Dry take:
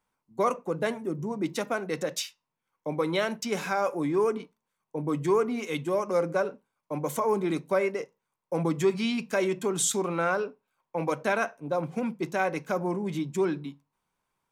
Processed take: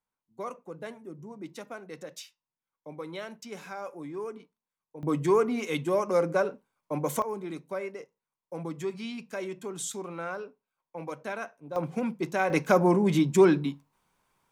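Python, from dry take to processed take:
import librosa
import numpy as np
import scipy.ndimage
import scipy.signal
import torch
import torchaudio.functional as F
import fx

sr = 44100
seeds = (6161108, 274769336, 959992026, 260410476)

y = fx.gain(x, sr, db=fx.steps((0.0, -11.5), (5.03, 1.0), (7.22, -9.0), (11.76, 0.0), (12.5, 7.5)))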